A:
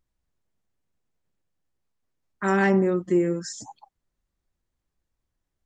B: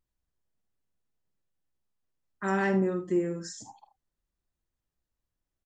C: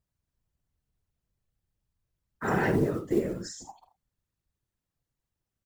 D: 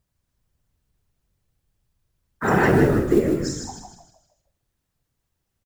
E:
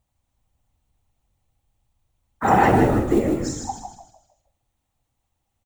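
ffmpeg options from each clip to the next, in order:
-af "bandreject=f=2.2k:w=22,aecho=1:1:48|78:0.282|0.2,volume=-6dB"
-af "acrusher=bits=7:mode=log:mix=0:aa=0.000001,afftfilt=real='hypot(re,im)*cos(2*PI*random(0))':imag='hypot(re,im)*sin(2*PI*random(1))':win_size=512:overlap=0.75,volume=6.5dB"
-filter_complex "[0:a]asplit=6[a][b][c][d][e][f];[b]adelay=156,afreqshift=-45,volume=-6dB[g];[c]adelay=312,afreqshift=-90,volume=-14.2dB[h];[d]adelay=468,afreqshift=-135,volume=-22.4dB[i];[e]adelay=624,afreqshift=-180,volume=-30.5dB[j];[f]adelay=780,afreqshift=-225,volume=-38.7dB[k];[a][g][h][i][j][k]amix=inputs=6:normalize=0,volume=8dB"
-af "equalizer=f=160:t=o:w=0.33:g=-9,equalizer=f=400:t=o:w=0.33:g=-7,equalizer=f=800:t=o:w=0.33:g=9,equalizer=f=1.6k:t=o:w=0.33:g=-7,equalizer=f=5k:t=o:w=0.33:g=-7,equalizer=f=12.5k:t=o:w=0.33:g=-8,volume=2dB"

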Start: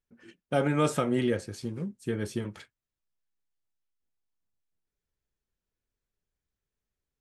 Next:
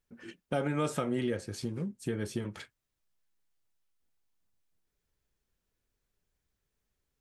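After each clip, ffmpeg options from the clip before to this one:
-af "acompressor=threshold=-42dB:ratio=2,volume=5.5dB"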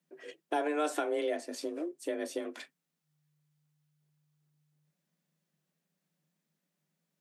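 -af "afreqshift=150,asubboost=boost=11:cutoff=63"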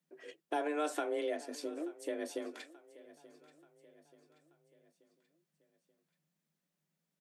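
-af "aecho=1:1:882|1764|2646|3528:0.106|0.0519|0.0254|0.0125,volume=-3.5dB"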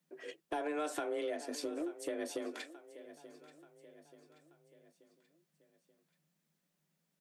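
-af "acompressor=threshold=-38dB:ratio=3,asoftclip=type=tanh:threshold=-30.5dB,volume=4dB"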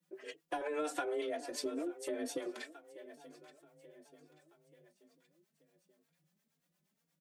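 -filter_complex "[0:a]acrossover=split=500[a][b];[a]aeval=exprs='val(0)*(1-0.7/2+0.7/2*cos(2*PI*8.5*n/s))':c=same[c];[b]aeval=exprs='val(0)*(1-0.7/2-0.7/2*cos(2*PI*8.5*n/s))':c=same[d];[c][d]amix=inputs=2:normalize=0,asplit=2[e][f];[f]adelay=3.7,afreqshift=2.1[g];[e][g]amix=inputs=2:normalize=1,volume=6.5dB"

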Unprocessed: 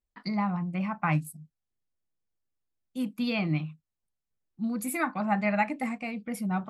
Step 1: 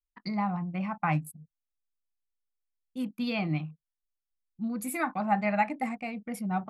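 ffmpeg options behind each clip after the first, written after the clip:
-af "anlmdn=0.0251,adynamicequalizer=threshold=0.00501:dfrequency=760:dqfactor=4.6:tfrequency=760:tqfactor=4.6:attack=5:release=100:ratio=0.375:range=3:mode=boostabove:tftype=bell,volume=-2dB"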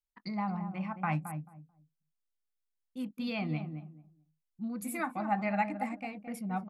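-filter_complex "[0:a]asplit=2[a][b];[b]adelay=219,lowpass=f=820:p=1,volume=-7dB,asplit=2[c][d];[d]adelay=219,lowpass=f=820:p=1,volume=0.22,asplit=2[e][f];[f]adelay=219,lowpass=f=820:p=1,volume=0.22[g];[a][c][e][g]amix=inputs=4:normalize=0,volume=-4.5dB"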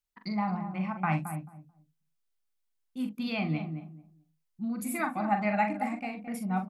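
-filter_complex "[0:a]bandreject=f=500:w=12,asplit=2[a][b];[b]adelay=43,volume=-7dB[c];[a][c]amix=inputs=2:normalize=0,volume=3dB"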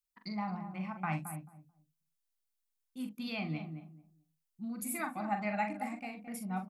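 -af "highshelf=f=4.5k:g=8.5,volume=-7dB"

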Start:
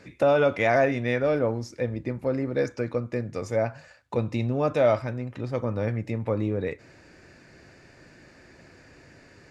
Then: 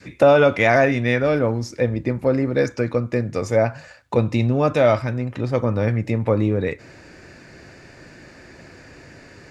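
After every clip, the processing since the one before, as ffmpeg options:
-af "adynamicequalizer=threshold=0.0224:dfrequency=570:dqfactor=0.79:tfrequency=570:tqfactor=0.79:attack=5:release=100:ratio=0.375:range=2.5:mode=cutabove:tftype=bell,volume=8dB"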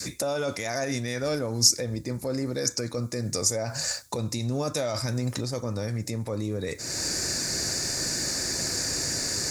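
-af "areverse,acompressor=threshold=-26dB:ratio=5,areverse,alimiter=level_in=4.5dB:limit=-24dB:level=0:latency=1:release=298,volume=-4.5dB,aexciter=amount=15.5:drive=2.5:freq=4.3k,volume=8dB"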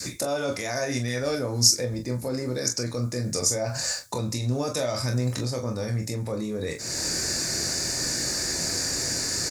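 -af "aecho=1:1:24|42:0.473|0.355"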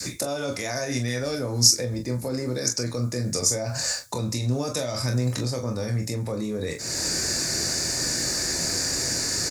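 -filter_complex "[0:a]acrossover=split=290|3000[a][b][c];[b]acompressor=threshold=-29dB:ratio=6[d];[a][d][c]amix=inputs=3:normalize=0,volume=1.5dB"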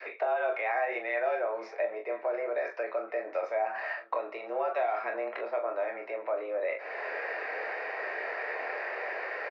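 -af "aecho=1:1:1027:0.0944,highpass=f=400:t=q:w=0.5412,highpass=f=400:t=q:w=1.307,lowpass=f=2.4k:t=q:w=0.5176,lowpass=f=2.4k:t=q:w=0.7071,lowpass=f=2.4k:t=q:w=1.932,afreqshift=99,volume=1.5dB"

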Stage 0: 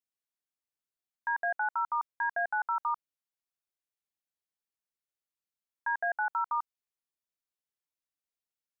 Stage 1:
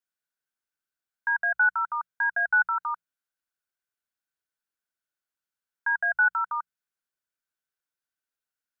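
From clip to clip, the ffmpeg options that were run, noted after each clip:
-filter_complex "[0:a]equalizer=f=1.5k:t=o:w=0.3:g=14,bandreject=f=60:t=h:w=6,bandreject=f=120:t=h:w=6,bandreject=f=180:t=h:w=6,acrossover=split=900[a][b];[a]alimiter=level_in=11.5dB:limit=-24dB:level=0:latency=1:release=26,volume=-11.5dB[c];[c][b]amix=inputs=2:normalize=0"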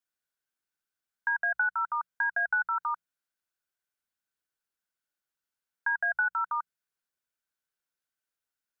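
-af "acompressor=threshold=-25dB:ratio=6"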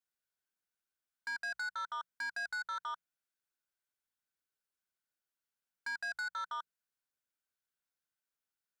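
-af "asoftclip=type=tanh:threshold=-31.5dB,volume=-4dB"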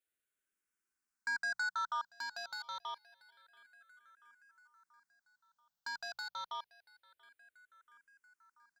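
-filter_complex "[0:a]aecho=1:1:684|1368|2052|2736:0.0841|0.0454|0.0245|0.0132,asplit=2[a][b];[b]afreqshift=-0.27[c];[a][c]amix=inputs=2:normalize=1,volume=4dB"

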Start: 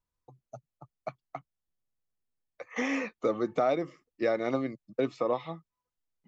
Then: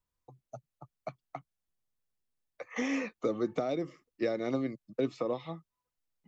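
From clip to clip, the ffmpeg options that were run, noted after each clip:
-filter_complex "[0:a]acrossover=split=470|3000[a][b][c];[b]acompressor=threshold=-38dB:ratio=6[d];[a][d][c]amix=inputs=3:normalize=0"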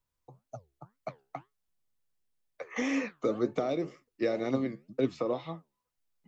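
-af "flanger=delay=7:depth=8.1:regen=75:speed=2:shape=sinusoidal,volume=6dB"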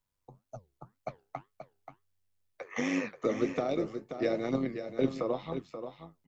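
-af "tremolo=f=97:d=0.571,aecho=1:1:531:0.355,volume=2dB"

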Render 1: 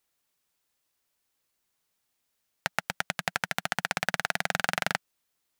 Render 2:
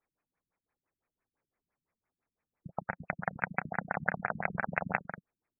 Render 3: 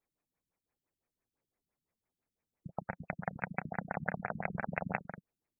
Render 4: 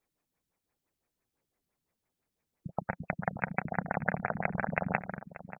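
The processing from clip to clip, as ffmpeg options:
-af "aecho=1:1:32.07|230.3:0.282|0.355,afftfilt=real='re*lt(b*sr/1024,280*pow(2700/280,0.5+0.5*sin(2*PI*5.9*pts/sr)))':imag='im*lt(b*sr/1024,280*pow(2700/280,0.5+0.5*sin(2*PI*5.9*pts/sr)))':win_size=1024:overlap=0.75"
-af "equalizer=f=1.4k:w=0.88:g=-7"
-filter_complex "[0:a]asplit=2[a][b];[b]adelay=583.1,volume=-14dB,highshelf=f=4k:g=-13.1[c];[a][c]amix=inputs=2:normalize=0,volume=5dB"

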